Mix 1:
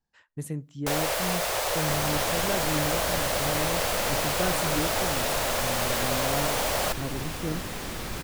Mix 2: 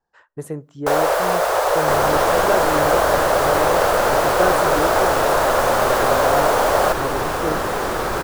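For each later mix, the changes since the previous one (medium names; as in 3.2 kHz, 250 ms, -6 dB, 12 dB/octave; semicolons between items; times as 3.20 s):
second sound +5.5 dB; master: add high-order bell 750 Hz +12 dB 2.5 oct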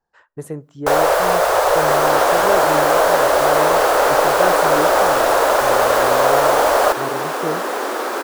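first sound +3.0 dB; second sound: add steep high-pass 240 Hz 48 dB/octave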